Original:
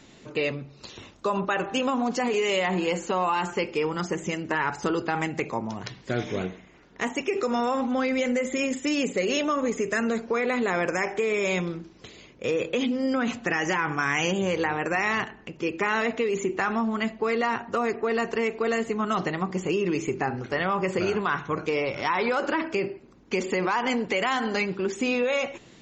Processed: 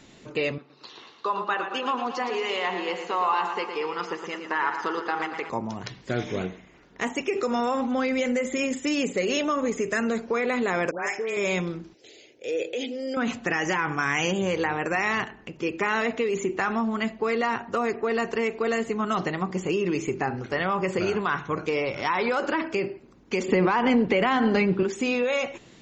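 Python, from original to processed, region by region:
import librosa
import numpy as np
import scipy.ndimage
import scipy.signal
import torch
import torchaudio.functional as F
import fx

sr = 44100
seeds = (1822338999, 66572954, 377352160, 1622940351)

y = fx.chain(x, sr, fx.cabinet(low_hz=430.0, low_slope=12, high_hz=5000.0, hz=(590.0, 1100.0, 2400.0), db=(-7, 4, -5)),
    fx.echo_warbled(ms=115, feedback_pct=61, rate_hz=2.8, cents=52, wet_db=-8.5), at=(0.58, 5.5))
y = fx.chain(y, sr, fx.low_shelf(hz=320.0, db=-11.5),
    fx.dispersion(late='highs', ms=123.0, hz=1600.0), at=(10.91, 11.37))
y = fx.chain(y, sr, fx.highpass(hz=220.0, slope=12),
    fx.fixed_phaser(hz=460.0, stages=4),
    fx.transient(attack_db=-6, sustain_db=1), at=(11.94, 13.17))
y = fx.chain(y, sr, fx.lowpass(hz=3800.0, slope=12),
    fx.low_shelf(hz=440.0, db=9.5),
    fx.band_squash(depth_pct=40), at=(23.48, 24.83))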